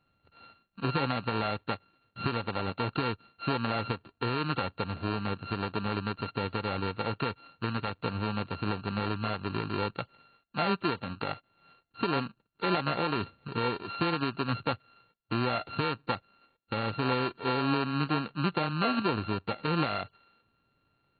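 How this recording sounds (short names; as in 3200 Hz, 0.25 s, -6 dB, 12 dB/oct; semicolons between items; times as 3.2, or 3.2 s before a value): a buzz of ramps at a fixed pitch in blocks of 32 samples; AC-3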